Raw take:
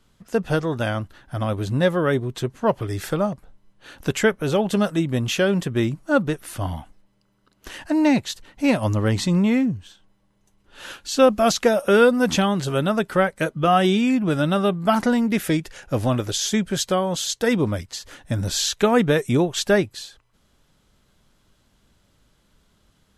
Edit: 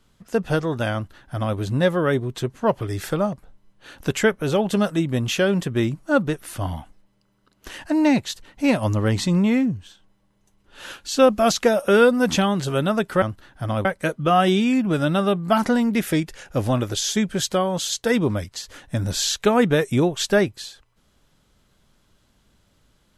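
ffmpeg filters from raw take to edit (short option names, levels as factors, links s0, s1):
-filter_complex "[0:a]asplit=3[s0][s1][s2];[s0]atrim=end=13.222[s3];[s1]atrim=start=0.938:end=1.572[s4];[s2]atrim=start=13.218[s5];[s3][s4]acrossfade=d=0.004:c1=hsin:c2=hsin[s6];[s6][s5]acrossfade=d=0.004:c1=hsin:c2=hsin"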